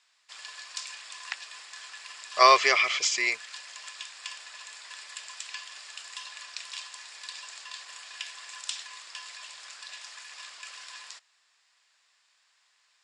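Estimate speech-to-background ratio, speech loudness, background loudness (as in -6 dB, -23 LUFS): 19.0 dB, -21.5 LUFS, -40.5 LUFS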